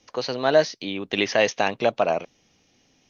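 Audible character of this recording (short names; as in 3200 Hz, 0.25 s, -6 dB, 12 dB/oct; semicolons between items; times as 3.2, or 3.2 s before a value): noise floor -64 dBFS; spectral tilt -3.5 dB/oct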